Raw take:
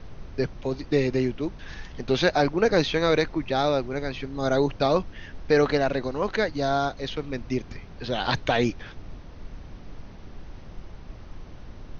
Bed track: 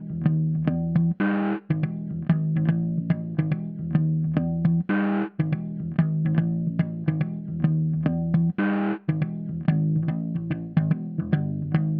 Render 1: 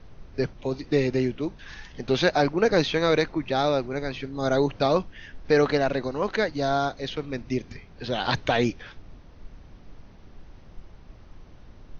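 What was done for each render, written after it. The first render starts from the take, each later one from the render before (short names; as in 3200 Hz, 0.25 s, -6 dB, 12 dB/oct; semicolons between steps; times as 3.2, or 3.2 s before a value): noise print and reduce 6 dB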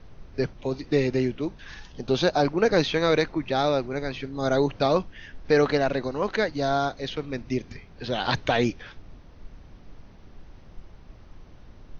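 1.79–2.45 bell 2000 Hz -10 dB 0.59 oct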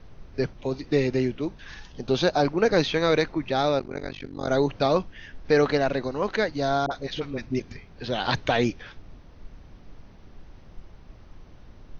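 3.79–4.49 AM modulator 48 Hz, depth 100%; 6.86–7.6 dispersion highs, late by 50 ms, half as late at 650 Hz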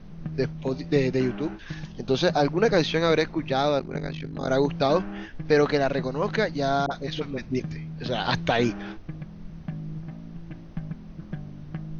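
add bed track -12.5 dB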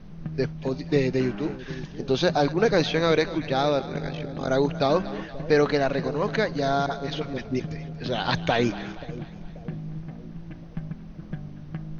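split-band echo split 620 Hz, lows 0.534 s, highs 0.235 s, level -15 dB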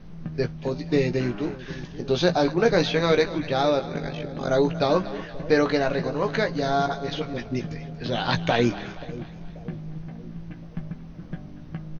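doubler 17 ms -7 dB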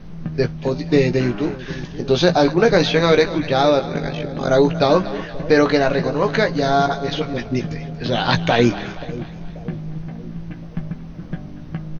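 gain +6.5 dB; limiter -2 dBFS, peak gain reduction 3 dB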